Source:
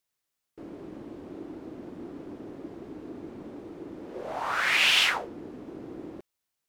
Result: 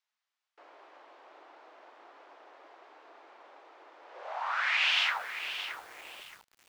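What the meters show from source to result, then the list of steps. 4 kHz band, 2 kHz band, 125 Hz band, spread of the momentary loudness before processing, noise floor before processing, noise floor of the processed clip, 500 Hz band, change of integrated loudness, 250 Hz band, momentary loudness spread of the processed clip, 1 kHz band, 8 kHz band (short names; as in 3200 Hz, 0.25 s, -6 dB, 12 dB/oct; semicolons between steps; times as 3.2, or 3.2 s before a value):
-5.5 dB, -4.0 dB, under -25 dB, 22 LU, -84 dBFS, under -85 dBFS, -11.0 dB, -6.0 dB, under -25 dB, 21 LU, -3.0 dB, -12.0 dB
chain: HPF 740 Hz 24 dB/oct; high shelf 11000 Hz +4.5 dB; in parallel at +0.5 dB: compressor 6:1, threshold -39 dBFS, peak gain reduction 19 dB; on the sum: air absorption 150 m; lo-fi delay 0.621 s, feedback 35%, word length 7-bit, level -9.5 dB; gain -4 dB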